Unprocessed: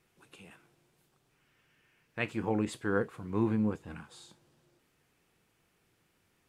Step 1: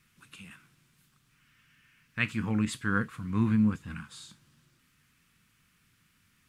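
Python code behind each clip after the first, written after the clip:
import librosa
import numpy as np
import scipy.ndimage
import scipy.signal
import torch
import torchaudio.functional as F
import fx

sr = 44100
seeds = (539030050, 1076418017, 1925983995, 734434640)

y = fx.band_shelf(x, sr, hz=540.0, db=-15.0, octaves=1.7)
y = y * 10.0 ** (6.0 / 20.0)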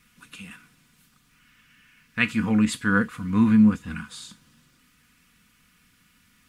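y = x + 0.51 * np.pad(x, (int(4.1 * sr / 1000.0), 0))[:len(x)]
y = y * 10.0 ** (6.0 / 20.0)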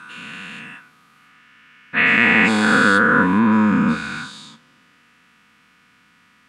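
y = fx.spec_dilate(x, sr, span_ms=480)
y = fx.bandpass_q(y, sr, hz=920.0, q=0.53)
y = y * 10.0 ** (5.0 / 20.0)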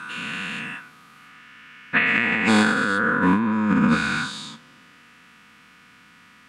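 y = fx.over_compress(x, sr, threshold_db=-18.0, ratio=-0.5)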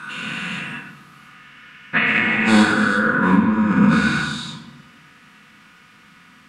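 y = fx.room_shoebox(x, sr, seeds[0], volume_m3=270.0, walls='mixed', distance_m=0.98)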